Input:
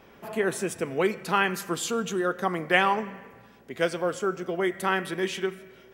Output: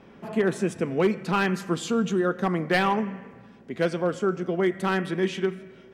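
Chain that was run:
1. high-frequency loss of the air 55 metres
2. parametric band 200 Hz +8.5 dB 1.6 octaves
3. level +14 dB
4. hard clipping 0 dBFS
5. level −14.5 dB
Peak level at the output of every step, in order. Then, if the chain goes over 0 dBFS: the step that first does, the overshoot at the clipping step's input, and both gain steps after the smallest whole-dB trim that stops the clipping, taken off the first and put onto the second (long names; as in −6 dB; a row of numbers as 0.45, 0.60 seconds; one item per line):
−6.5, −5.5, +8.5, 0.0, −14.5 dBFS
step 3, 8.5 dB
step 3 +5 dB, step 5 −5.5 dB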